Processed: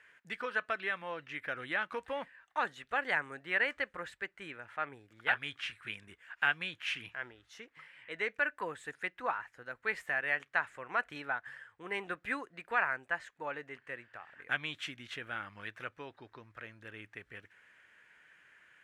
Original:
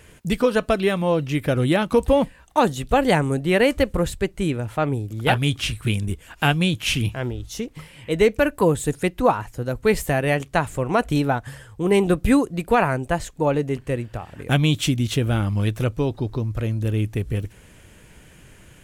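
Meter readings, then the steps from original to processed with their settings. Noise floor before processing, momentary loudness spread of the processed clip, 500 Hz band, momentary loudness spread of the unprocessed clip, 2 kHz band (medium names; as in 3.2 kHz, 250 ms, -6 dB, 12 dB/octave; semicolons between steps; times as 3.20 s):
-50 dBFS, 17 LU, -22.0 dB, 9 LU, -5.0 dB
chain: band-pass filter 1.7 kHz, Q 3; trim -2.5 dB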